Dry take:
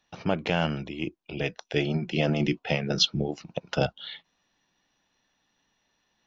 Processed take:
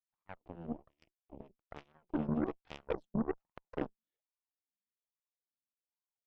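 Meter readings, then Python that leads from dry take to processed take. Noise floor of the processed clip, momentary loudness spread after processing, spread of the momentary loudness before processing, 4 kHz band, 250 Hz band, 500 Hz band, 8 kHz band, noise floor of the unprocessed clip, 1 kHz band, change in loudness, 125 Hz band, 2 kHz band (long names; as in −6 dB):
below −85 dBFS, 20 LU, 11 LU, −32.5 dB, −9.0 dB, −12.5 dB, can't be measured, −75 dBFS, −12.5 dB, −11.5 dB, −16.5 dB, −21.0 dB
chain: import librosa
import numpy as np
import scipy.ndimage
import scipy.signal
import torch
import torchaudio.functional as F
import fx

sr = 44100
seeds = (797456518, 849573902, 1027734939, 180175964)

y = fx.fade_in_head(x, sr, length_s=0.86)
y = fx.wah_lfo(y, sr, hz=1.2, low_hz=200.0, high_hz=1100.0, q=8.6)
y = fx.cheby_harmonics(y, sr, harmonics=(4, 5, 7, 8), levels_db=(-17, -44, -17, -31), full_scale_db=-26.0)
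y = y * 10.0 ** (2.5 / 20.0)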